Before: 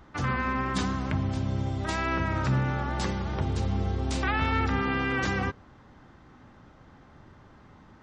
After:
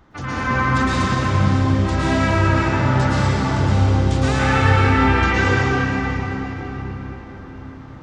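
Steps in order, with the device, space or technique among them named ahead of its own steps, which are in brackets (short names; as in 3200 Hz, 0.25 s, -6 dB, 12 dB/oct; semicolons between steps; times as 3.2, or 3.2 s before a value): cathedral (reverb RT60 4.8 s, pre-delay 0.105 s, DRR -10.5 dB)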